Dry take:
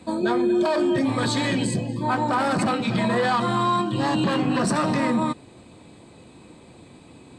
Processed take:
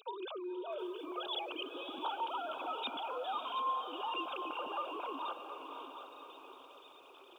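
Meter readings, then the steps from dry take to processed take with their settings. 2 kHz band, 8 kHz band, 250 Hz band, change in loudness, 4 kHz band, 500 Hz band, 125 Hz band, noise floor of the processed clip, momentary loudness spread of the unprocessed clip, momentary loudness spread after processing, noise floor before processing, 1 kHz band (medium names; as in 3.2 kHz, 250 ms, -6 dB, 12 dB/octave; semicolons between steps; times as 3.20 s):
-18.5 dB, under -35 dB, -26.0 dB, -17.0 dB, -10.0 dB, -17.5 dB, under -40 dB, -58 dBFS, 4 LU, 15 LU, -48 dBFS, -13.0 dB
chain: formants replaced by sine waves; compression 3:1, threshold -36 dBFS, peak gain reduction 18 dB; Butterworth band-stop 1.9 kHz, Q 1.1; differentiator; echo that smears into a reverb 542 ms, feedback 49%, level -8.5 dB; bit-crushed delay 726 ms, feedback 35%, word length 13-bit, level -10.5 dB; trim +15 dB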